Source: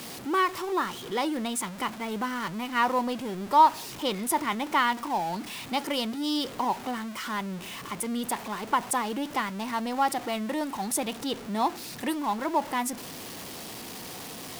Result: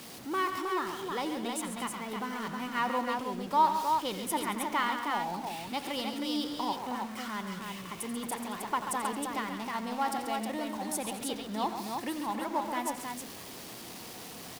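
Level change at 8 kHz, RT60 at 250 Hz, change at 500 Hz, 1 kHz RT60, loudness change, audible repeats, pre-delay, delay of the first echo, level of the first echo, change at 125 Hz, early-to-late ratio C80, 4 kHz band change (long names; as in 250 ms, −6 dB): −4.5 dB, no reverb audible, −4.5 dB, no reverb audible, −4.5 dB, 4, no reverb audible, 87 ms, −13.0 dB, −4.5 dB, no reverb audible, −4.5 dB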